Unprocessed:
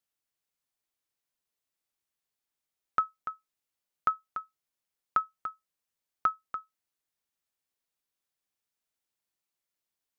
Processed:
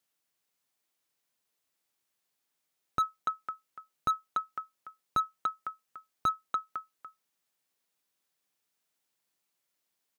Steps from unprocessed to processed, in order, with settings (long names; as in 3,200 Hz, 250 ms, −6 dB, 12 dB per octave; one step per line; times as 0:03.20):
high-pass filter 120 Hz
on a send: single-tap delay 504 ms −17.5 dB
on the sum: slew-rate limiting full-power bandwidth 43 Hz
level +6 dB